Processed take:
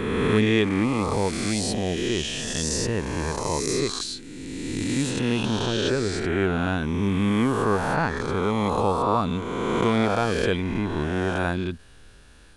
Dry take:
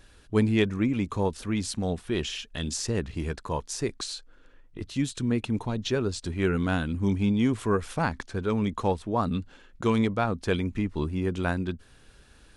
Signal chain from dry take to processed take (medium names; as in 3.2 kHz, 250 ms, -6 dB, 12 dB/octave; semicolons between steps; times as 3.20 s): reverse spectral sustain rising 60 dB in 2.34 s; 5.66–8.17 s: treble shelf 5.4 kHz -5.5 dB